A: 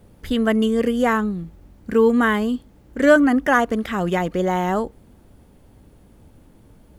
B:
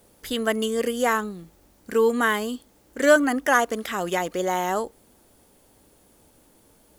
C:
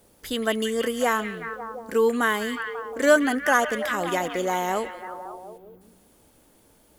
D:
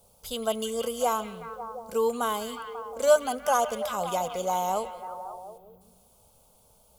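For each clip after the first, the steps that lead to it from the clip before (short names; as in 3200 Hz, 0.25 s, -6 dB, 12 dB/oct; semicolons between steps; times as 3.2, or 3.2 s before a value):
tone controls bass -13 dB, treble +10 dB; gain -2 dB
spectral gain 5.58–5.81, 1600–12000 Hz -17 dB; delay with a stepping band-pass 0.18 s, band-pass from 2600 Hz, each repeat -0.7 oct, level -4.5 dB; gain -1 dB
fixed phaser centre 750 Hz, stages 4; on a send at -21.5 dB: reverb RT60 2.2 s, pre-delay 4 ms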